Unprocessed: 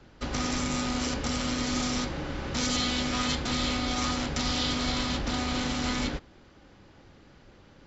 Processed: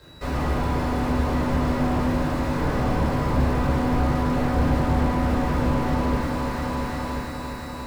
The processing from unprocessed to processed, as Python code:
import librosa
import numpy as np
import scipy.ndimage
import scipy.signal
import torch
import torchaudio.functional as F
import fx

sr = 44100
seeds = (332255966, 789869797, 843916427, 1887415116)

p1 = scipy.signal.sosfilt(scipy.signal.butter(2, 48.0, 'highpass', fs=sr, output='sos'), x)
p2 = p1 + 0.38 * np.pad(p1, (int(3.0 * sr / 1000.0), 0))[:len(p1)]
p3 = fx.sample_hold(p2, sr, seeds[0], rate_hz=3200.0, jitter_pct=0)
p4 = p3 + 10.0 ** (-53.0 / 20.0) * np.sin(2.0 * np.pi * 3900.0 * np.arange(len(p3)) / sr)
p5 = p4 + fx.echo_heads(p4, sr, ms=347, heads='all three', feedback_pct=54, wet_db=-11, dry=0)
p6 = fx.room_shoebox(p5, sr, seeds[1], volume_m3=820.0, walls='furnished', distance_m=5.1)
y = fx.slew_limit(p6, sr, full_power_hz=46.0)